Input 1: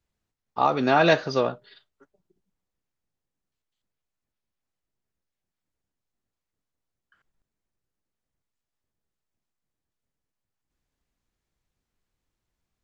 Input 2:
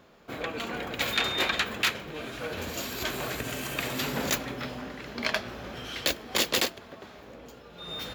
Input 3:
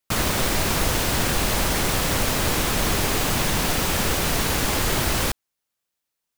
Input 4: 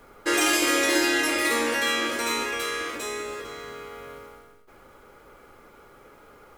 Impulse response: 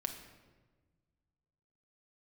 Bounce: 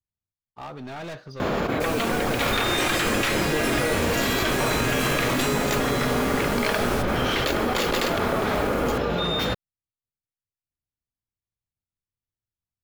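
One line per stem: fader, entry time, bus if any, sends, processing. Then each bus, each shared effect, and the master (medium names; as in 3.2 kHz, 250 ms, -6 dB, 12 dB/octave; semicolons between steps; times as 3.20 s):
-17.0 dB, 0.00 s, no send, peaking EQ 100 Hz +12.5 dB 1.4 oct; waveshaping leveller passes 1; overload inside the chain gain 15.5 dB
+2.0 dB, 1.40 s, no send, treble shelf 2.5 kHz -9.5 dB; level flattener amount 100%
-13.5 dB, 1.70 s, no send, comb 7.2 ms, depth 80%
-9.0 dB, 2.40 s, no send, level flattener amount 100%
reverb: none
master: none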